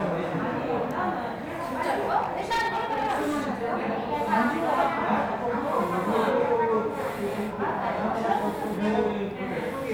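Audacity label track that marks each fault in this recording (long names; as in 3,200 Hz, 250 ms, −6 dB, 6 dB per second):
2.200000	3.470000	clipping −22 dBFS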